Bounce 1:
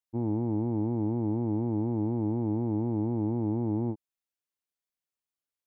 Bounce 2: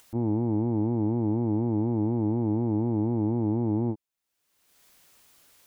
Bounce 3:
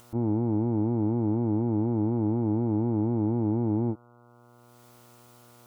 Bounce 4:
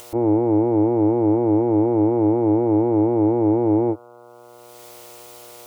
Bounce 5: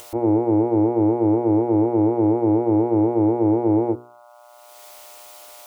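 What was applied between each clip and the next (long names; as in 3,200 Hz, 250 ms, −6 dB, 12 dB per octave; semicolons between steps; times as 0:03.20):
upward compression, threshold −38 dBFS; level +3 dB
hum with harmonics 120 Hz, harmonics 12, −56 dBFS −3 dB per octave
drawn EQ curve 100 Hz 0 dB, 180 Hz −25 dB, 280 Hz +3 dB, 510 Hz +11 dB, 1,400 Hz +1 dB, 2,100 Hz +9 dB; level +6 dB
mains-hum notches 60/120/180/240/300/360/420/480 Hz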